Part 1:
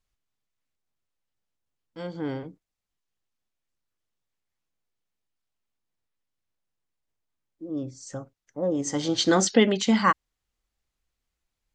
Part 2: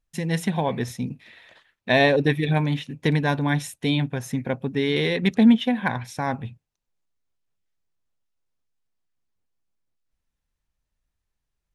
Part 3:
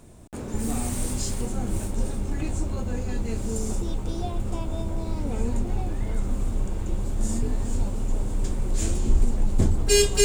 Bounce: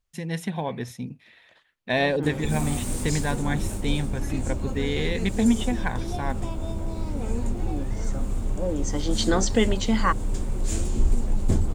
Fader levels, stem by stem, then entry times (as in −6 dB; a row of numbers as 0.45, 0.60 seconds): −2.5, −5.0, −1.0 decibels; 0.00, 0.00, 1.90 seconds